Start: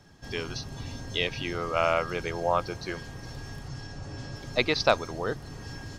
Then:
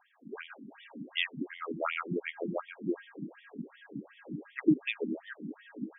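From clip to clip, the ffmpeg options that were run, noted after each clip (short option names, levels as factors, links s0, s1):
-af "asubboost=boost=12:cutoff=230,afftfilt=real='re*between(b*sr/1024,240*pow(2600/240,0.5+0.5*sin(2*PI*2.7*pts/sr))/1.41,240*pow(2600/240,0.5+0.5*sin(2*PI*2.7*pts/sr))*1.41)':imag='im*between(b*sr/1024,240*pow(2600/240,0.5+0.5*sin(2*PI*2.7*pts/sr))/1.41,240*pow(2600/240,0.5+0.5*sin(2*PI*2.7*pts/sr))*1.41)':win_size=1024:overlap=0.75"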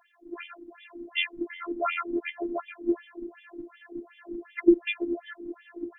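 -af "afftfilt=real='hypot(re,im)*cos(PI*b)':imag='0':win_size=512:overlap=0.75,volume=2.37"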